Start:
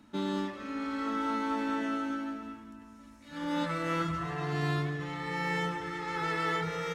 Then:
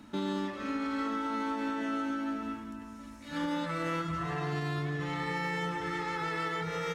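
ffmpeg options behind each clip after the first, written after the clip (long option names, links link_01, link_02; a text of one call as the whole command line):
ffmpeg -i in.wav -af "alimiter=level_in=7dB:limit=-24dB:level=0:latency=1:release=390,volume=-7dB,volume=6dB" out.wav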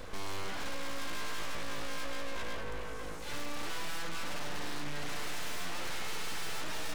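ffmpeg -i in.wav -af "aeval=exprs='(tanh(100*val(0)+0.1)-tanh(0.1))/100':channel_layout=same,aeval=exprs='abs(val(0))':channel_layout=same,volume=10dB" out.wav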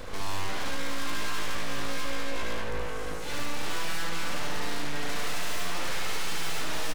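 ffmpeg -i in.wav -af "aecho=1:1:73:0.708,volume=4.5dB" out.wav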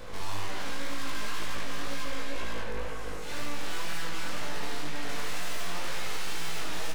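ffmpeg -i in.wav -af "flanger=delay=17:depth=6:speed=2" out.wav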